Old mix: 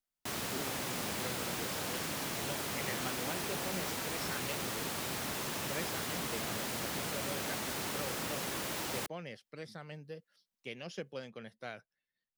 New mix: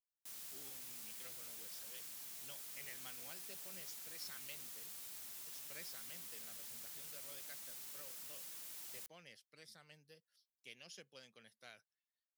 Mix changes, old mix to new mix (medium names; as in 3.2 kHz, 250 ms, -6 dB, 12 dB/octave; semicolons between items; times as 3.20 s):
background -10.5 dB; master: add pre-emphasis filter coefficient 0.9